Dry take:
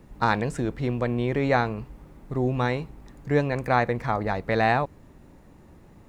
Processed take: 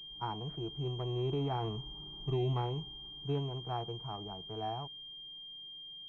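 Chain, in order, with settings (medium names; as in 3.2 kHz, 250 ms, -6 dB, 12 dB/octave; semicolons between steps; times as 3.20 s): Doppler pass-by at 2.06 s, 8 m/s, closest 4.9 m; harmonic-percussive split percussive -6 dB; peak limiter -22 dBFS, peak gain reduction 6 dB; static phaser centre 360 Hz, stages 8; class-D stage that switches slowly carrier 3.2 kHz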